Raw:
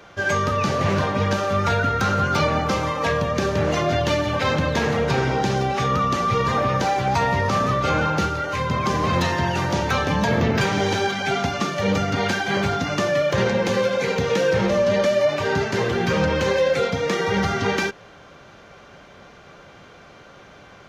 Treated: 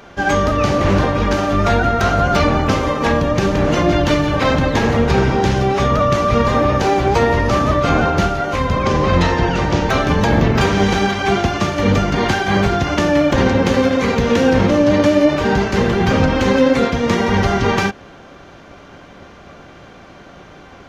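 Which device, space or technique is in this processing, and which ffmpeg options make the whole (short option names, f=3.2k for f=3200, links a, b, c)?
octave pedal: -filter_complex "[0:a]asettb=1/sr,asplit=3[a][b][c];[a]atrim=end=8.834[d];[b]atrim=start=8.83:end=9.9,asetpts=PTS-STARTPTS,afade=t=in:d=0.004:c=qsin,afade=t=out:st=1.066:d=0.004:c=qsin,lowpass=6.8k[e];[c]atrim=start=9.896[f];[d][e]acrossfade=d=0.004:c1=hsin:c2=qsin[g];[g][f]acrossfade=d=0.004:c1=qsin:c2=hsin,equalizer=f=340:w=4.8:g=3.5,asplit=2[h][i];[i]asetrate=22050,aresample=44100,atempo=2,volume=0dB[j];[h][j]amix=inputs=2:normalize=0,volume=3dB"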